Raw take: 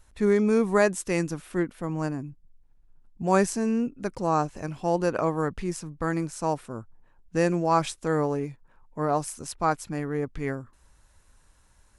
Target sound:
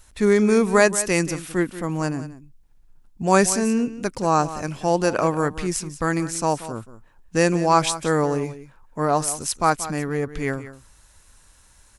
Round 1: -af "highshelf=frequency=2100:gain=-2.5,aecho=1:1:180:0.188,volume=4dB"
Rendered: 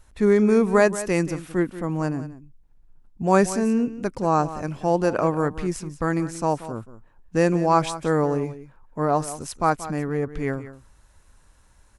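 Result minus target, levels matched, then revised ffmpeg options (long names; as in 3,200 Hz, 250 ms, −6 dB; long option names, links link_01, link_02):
4,000 Hz band −7.0 dB
-af "highshelf=frequency=2100:gain=8,aecho=1:1:180:0.188,volume=4dB"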